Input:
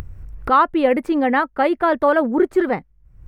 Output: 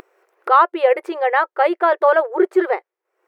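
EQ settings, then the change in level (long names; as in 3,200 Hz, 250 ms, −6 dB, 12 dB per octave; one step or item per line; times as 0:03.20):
linear-phase brick-wall high-pass 340 Hz
high-shelf EQ 4,100 Hz −7 dB
+2.5 dB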